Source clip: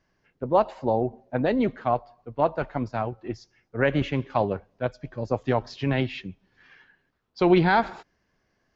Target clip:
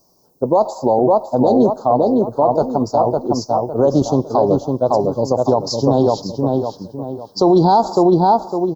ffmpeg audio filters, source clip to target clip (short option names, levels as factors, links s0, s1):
-filter_complex "[0:a]aemphasis=mode=production:type=bsi,asettb=1/sr,asplit=3[s0][s1][s2];[s0]atrim=end=1.824[s3];[s1]atrim=start=1.82:end=2.54,asetpts=PTS-STARTPTS,afade=t=in:d=0.004:c=qsin,afade=t=out:st=0.716:d=0.004:c=qsin,acrossover=split=3100[s4][s5];[s5]acompressor=threshold=0.00112:ratio=4:attack=1:release=60[s6];[s4][s6]amix=inputs=2:normalize=0[s7];[s2]atrim=start=2.536[s8];[s3][s7]acrossfade=d=0.004:c1=hsin:c2=qsin[s9];[s9][s8]acrossfade=d=0.004:c1=qsin:c2=hsin,asuperstop=centerf=2200:order=8:qfactor=0.57,equalizer=f=2400:t=o:w=0.74:g=5.5,asplit=2[s10][s11];[s11]adelay=556,lowpass=f=2600:p=1,volume=0.631,asplit=2[s12][s13];[s13]adelay=556,lowpass=f=2600:p=1,volume=0.36,asplit=2[s14][s15];[s15]adelay=556,lowpass=f=2600:p=1,volume=0.36,asplit=2[s16][s17];[s17]adelay=556,lowpass=f=2600:p=1,volume=0.36,asplit=2[s18][s19];[s19]adelay=556,lowpass=f=2600:p=1,volume=0.36[s20];[s10][s12][s14][s16][s18][s20]amix=inputs=6:normalize=0,alimiter=level_in=8.91:limit=0.891:release=50:level=0:latency=1,volume=0.668"